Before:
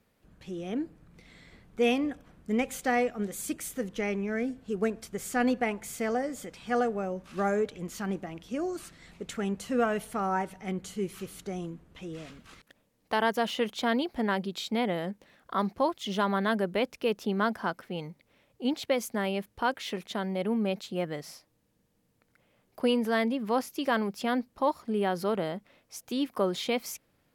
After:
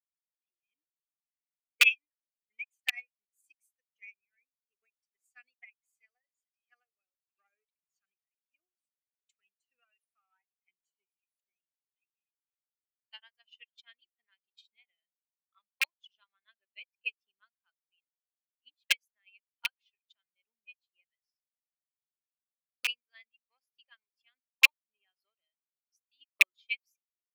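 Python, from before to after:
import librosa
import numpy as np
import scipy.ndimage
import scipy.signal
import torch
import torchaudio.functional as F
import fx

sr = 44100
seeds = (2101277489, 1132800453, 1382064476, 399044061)

y = fx.bin_expand(x, sr, power=2.0)
y = fx.transient(y, sr, attack_db=6, sustain_db=-4)
y = (np.mod(10.0 ** (15.0 / 20.0) * y + 1.0, 2.0) - 1.0) / 10.0 ** (15.0 / 20.0)
y = fx.highpass_res(y, sr, hz=2500.0, q=7.5)
y = fx.upward_expand(y, sr, threshold_db=-38.0, expansion=2.5)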